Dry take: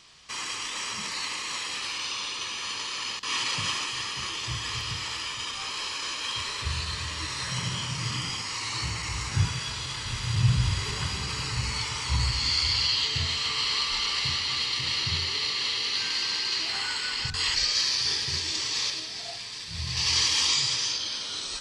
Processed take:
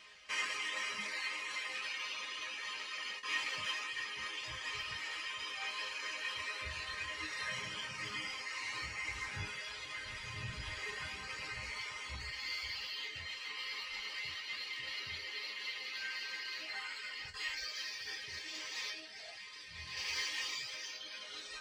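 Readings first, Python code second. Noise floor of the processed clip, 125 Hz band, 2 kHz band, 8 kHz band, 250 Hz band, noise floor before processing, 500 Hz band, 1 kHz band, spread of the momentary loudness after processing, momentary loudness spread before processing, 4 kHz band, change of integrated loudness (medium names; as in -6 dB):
-49 dBFS, -23.5 dB, -5.5 dB, -17.0 dB, -17.5 dB, -36 dBFS, -9.5 dB, -11.0 dB, 6 LU, 9 LU, -15.0 dB, -13.0 dB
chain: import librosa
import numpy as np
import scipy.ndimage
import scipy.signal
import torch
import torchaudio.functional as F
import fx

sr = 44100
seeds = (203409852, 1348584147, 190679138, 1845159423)

p1 = scipy.signal.sosfilt(scipy.signal.butter(2, 53.0, 'highpass', fs=sr, output='sos'), x)
p2 = 10.0 ** (-26.5 / 20.0) * np.tanh(p1 / 10.0 ** (-26.5 / 20.0))
p3 = p1 + (p2 * librosa.db_to_amplitude(-8.0))
p4 = fx.rider(p3, sr, range_db=10, speed_s=2.0)
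p5 = fx.graphic_eq_10(p4, sr, hz=(125, 250, 500, 1000, 2000, 4000, 8000), db=(-4, -7, 6, -4, 9, -4, -6))
p6 = fx.dereverb_blind(p5, sr, rt60_s=0.92)
p7 = fx.resonator_bank(p6, sr, root=56, chord='major', decay_s=0.21)
y = p7 * librosa.db_to_amplitude(2.5)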